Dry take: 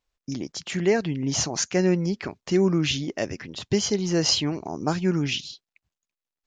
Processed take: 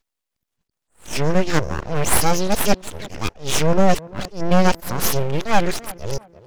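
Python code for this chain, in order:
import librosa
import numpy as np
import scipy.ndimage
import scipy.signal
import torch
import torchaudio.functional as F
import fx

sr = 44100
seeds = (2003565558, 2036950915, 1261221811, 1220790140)

p1 = x[::-1].copy()
p2 = np.abs(p1)
p3 = p2 + fx.echo_tape(p2, sr, ms=339, feedback_pct=36, wet_db=-17, lp_hz=1200.0, drive_db=7.0, wow_cents=29, dry=0)
p4 = fx.attack_slew(p3, sr, db_per_s=190.0)
y = p4 * 10.0 ** (8.5 / 20.0)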